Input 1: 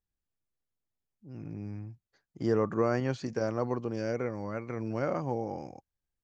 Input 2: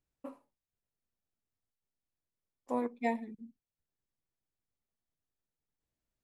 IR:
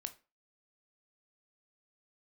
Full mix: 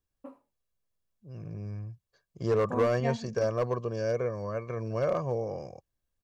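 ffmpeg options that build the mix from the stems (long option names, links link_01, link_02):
-filter_complex "[0:a]equalizer=frequency=2000:width_type=o:width=0.22:gain=-10.5,aecho=1:1:1.8:0.7,asoftclip=type=hard:threshold=-20.5dB,volume=0.5dB[link_01];[1:a]highshelf=frequency=2900:gain=-9,volume=-0.5dB[link_02];[link_01][link_02]amix=inputs=2:normalize=0"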